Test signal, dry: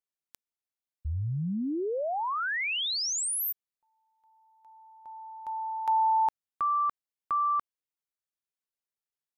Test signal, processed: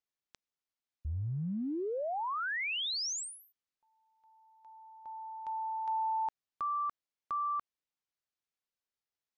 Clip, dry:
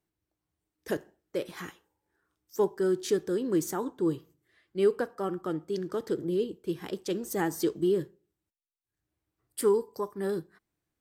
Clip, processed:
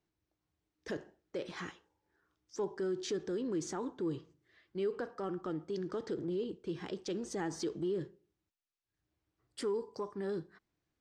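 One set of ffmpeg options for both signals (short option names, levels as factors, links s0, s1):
-af "lowpass=f=6500:w=0.5412,lowpass=f=6500:w=1.3066,acompressor=threshold=0.0178:ratio=2.5:attack=0.18:release=66:knee=6:detection=peak"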